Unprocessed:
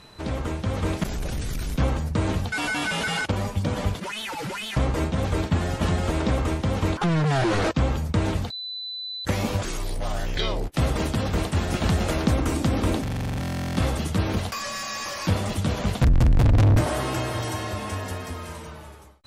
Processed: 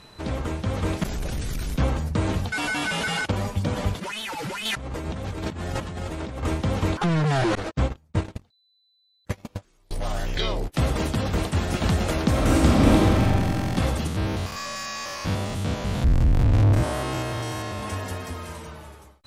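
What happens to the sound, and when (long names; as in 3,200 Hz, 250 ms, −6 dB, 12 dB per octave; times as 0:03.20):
0:04.65–0:06.43: compressor whose output falls as the input rises −31 dBFS
0:07.55–0:09.91: noise gate −22 dBFS, range −33 dB
0:12.29–0:13.21: thrown reverb, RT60 2.5 s, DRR −5.5 dB
0:14.07–0:17.83: spectrum averaged block by block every 100 ms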